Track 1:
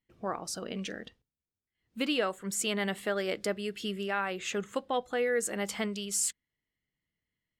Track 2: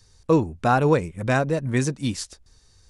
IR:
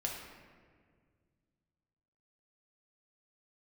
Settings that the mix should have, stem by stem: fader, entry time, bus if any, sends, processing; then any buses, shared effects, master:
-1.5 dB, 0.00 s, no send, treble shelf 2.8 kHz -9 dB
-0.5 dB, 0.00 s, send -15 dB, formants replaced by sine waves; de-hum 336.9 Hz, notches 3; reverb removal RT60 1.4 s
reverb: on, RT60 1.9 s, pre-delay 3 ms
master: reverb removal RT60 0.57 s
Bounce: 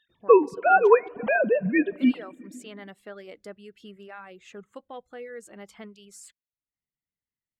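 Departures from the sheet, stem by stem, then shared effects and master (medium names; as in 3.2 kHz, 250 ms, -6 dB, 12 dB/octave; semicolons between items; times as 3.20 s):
stem 1 -1.5 dB -> -9.0 dB; stem 2: send -15 dB -> -8.5 dB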